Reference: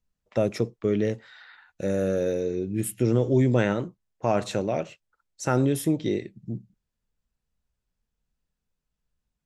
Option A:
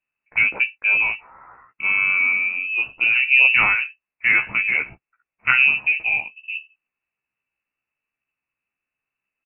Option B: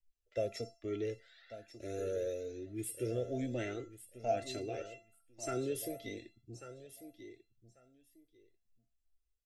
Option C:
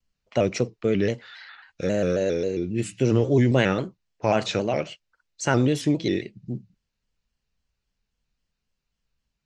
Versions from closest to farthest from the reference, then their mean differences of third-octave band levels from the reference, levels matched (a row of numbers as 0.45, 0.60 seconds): C, B, A; 3.0, 6.5, 15.5 decibels